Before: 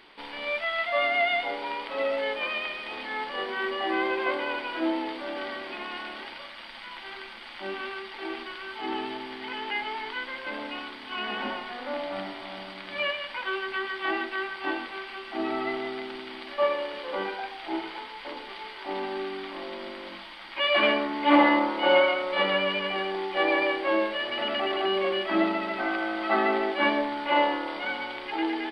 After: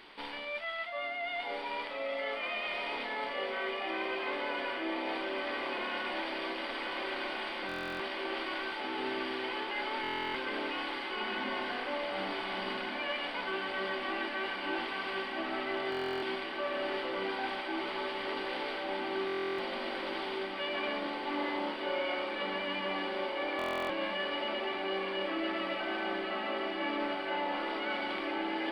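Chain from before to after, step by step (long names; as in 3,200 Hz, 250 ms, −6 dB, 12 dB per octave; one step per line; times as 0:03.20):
reversed playback
downward compressor 6 to 1, threshold −35 dBFS, peak gain reduction 19 dB
reversed playback
feedback delay with all-pass diffusion 1,362 ms, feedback 78%, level −4 dB
buffer that repeats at 0:07.67/0:10.02/0:15.90/0:19.26/0:23.57, samples 1,024, times 13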